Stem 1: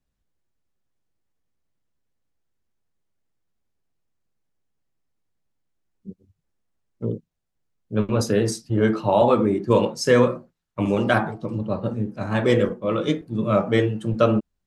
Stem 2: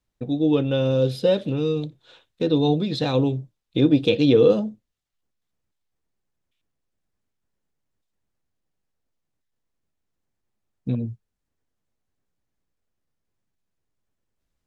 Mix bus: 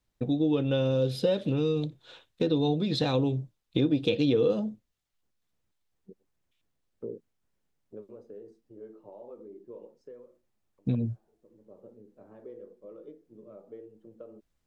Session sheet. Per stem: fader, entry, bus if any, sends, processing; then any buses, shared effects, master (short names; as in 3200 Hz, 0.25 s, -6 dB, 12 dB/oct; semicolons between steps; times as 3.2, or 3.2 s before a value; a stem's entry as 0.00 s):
7.65 s -2 dB -> 8.2 s -14 dB, 0.00 s, no send, compressor 4:1, threshold -26 dBFS, peak gain reduction 12.5 dB; auto-wah 430–4000 Hz, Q 2.4, down, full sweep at -35 dBFS; auto duck -20 dB, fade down 0.90 s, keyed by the second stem
+0.5 dB, 0.00 s, no send, dry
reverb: off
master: compressor 3:1, threshold -24 dBFS, peak gain reduction 10 dB